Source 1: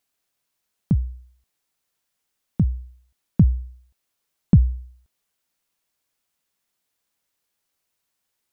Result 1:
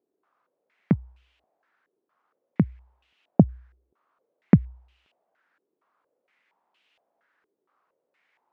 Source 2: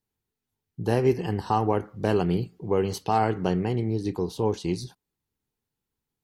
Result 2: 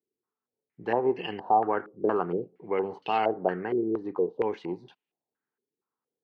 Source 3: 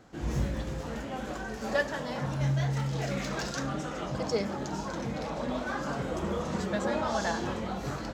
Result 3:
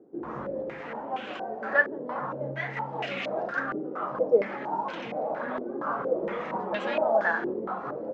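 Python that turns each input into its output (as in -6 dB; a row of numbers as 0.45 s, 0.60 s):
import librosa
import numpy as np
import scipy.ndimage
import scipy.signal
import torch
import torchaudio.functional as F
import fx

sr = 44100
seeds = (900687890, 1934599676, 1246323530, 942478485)

y = scipy.signal.sosfilt(scipy.signal.butter(2, 290.0, 'highpass', fs=sr, output='sos'), x)
y = fx.filter_held_lowpass(y, sr, hz=4.3, low_hz=390.0, high_hz=2800.0)
y = y * 10.0 ** (-30 / 20.0) / np.sqrt(np.mean(np.square(y)))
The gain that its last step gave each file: +9.0 dB, -4.0 dB, 0.0 dB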